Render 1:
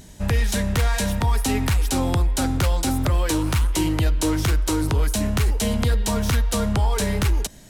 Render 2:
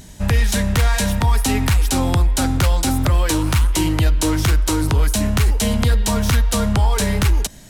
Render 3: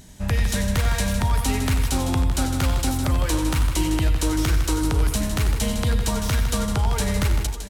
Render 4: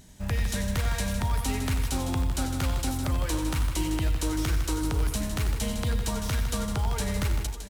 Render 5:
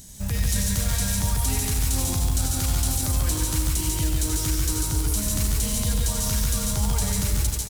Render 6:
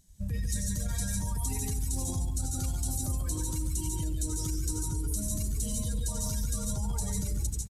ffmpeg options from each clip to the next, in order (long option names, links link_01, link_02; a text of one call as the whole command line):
ffmpeg -i in.wav -af "equalizer=frequency=420:width=1.1:gain=-3,volume=4.5dB" out.wav
ffmpeg -i in.wav -af "aecho=1:1:81|93|157|226|267|635:0.211|0.316|0.355|0.133|0.133|0.178,volume=-6dB" out.wav
ffmpeg -i in.wav -af "acrusher=bits=7:mode=log:mix=0:aa=0.000001,volume=-6dB" out.wav
ffmpeg -i in.wav -filter_complex "[0:a]bass=frequency=250:gain=5,treble=frequency=4000:gain=15,alimiter=limit=-17dB:level=0:latency=1:release=18,asplit=2[link_01][link_02];[link_02]aecho=0:1:78.72|142.9|268.2:0.282|0.708|0.251[link_03];[link_01][link_03]amix=inputs=2:normalize=0" out.wav
ffmpeg -i in.wav -filter_complex "[0:a]afftdn=noise_reduction=18:noise_floor=-31,acrossover=split=5700[link_01][link_02];[link_01]alimiter=limit=-21dB:level=0:latency=1:release=55[link_03];[link_03][link_02]amix=inputs=2:normalize=0,aresample=32000,aresample=44100,volume=-4dB" out.wav